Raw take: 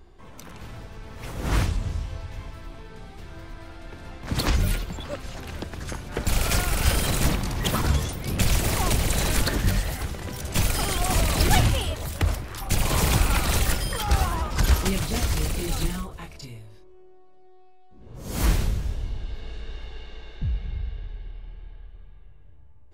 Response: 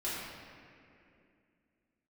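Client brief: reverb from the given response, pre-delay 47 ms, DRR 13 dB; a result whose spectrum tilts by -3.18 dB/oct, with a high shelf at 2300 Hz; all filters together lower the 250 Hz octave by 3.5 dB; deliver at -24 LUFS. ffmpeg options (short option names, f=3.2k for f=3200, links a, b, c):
-filter_complex "[0:a]equalizer=f=250:t=o:g=-5.5,highshelf=f=2.3k:g=4.5,asplit=2[a][b];[1:a]atrim=start_sample=2205,adelay=47[c];[b][c]afir=irnorm=-1:irlink=0,volume=-18dB[d];[a][d]amix=inputs=2:normalize=0,volume=0.5dB"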